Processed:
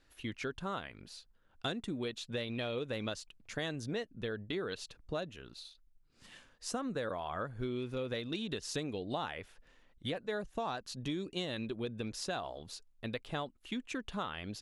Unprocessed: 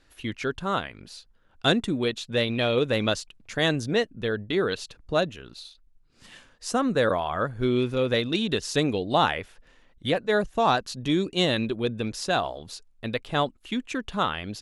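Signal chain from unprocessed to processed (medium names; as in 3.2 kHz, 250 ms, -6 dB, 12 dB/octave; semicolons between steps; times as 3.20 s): compression, threshold -27 dBFS, peak gain reduction 10.5 dB; trim -7 dB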